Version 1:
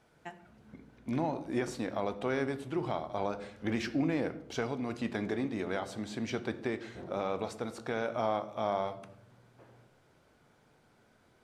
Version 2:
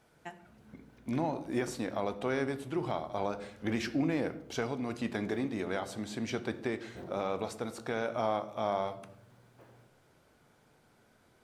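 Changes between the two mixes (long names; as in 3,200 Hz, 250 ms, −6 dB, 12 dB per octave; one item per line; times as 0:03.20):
background: add high-shelf EQ 7,900 Hz +11 dB
master: add high-shelf EQ 11,000 Hz +10.5 dB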